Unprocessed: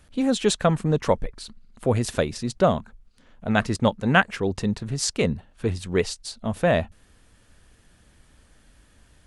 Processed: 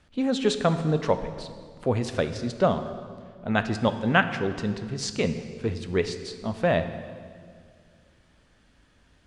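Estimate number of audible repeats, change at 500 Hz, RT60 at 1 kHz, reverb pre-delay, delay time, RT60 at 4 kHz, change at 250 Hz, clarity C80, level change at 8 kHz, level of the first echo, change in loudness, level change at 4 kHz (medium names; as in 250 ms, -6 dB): no echo, -2.0 dB, 1.8 s, 5 ms, no echo, 1.6 s, -2.5 dB, 11.5 dB, -8.0 dB, no echo, -2.5 dB, -3.0 dB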